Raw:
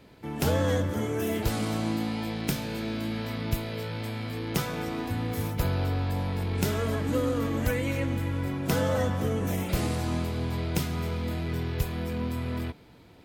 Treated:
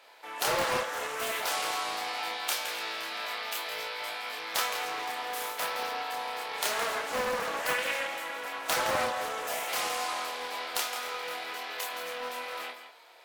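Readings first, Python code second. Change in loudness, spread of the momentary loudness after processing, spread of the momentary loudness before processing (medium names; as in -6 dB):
-2.0 dB, 7 LU, 6 LU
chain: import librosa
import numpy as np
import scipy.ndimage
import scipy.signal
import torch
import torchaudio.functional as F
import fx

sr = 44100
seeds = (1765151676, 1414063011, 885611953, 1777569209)

p1 = scipy.signal.sosfilt(scipy.signal.butter(4, 640.0, 'highpass', fs=sr, output='sos'), x)
p2 = fx.doubler(p1, sr, ms=28.0, db=-3.0)
p3 = p2 + fx.echo_single(p2, sr, ms=166, db=-10.0, dry=0)
p4 = fx.doppler_dist(p3, sr, depth_ms=0.38)
y = F.gain(torch.from_numpy(p4), 3.5).numpy()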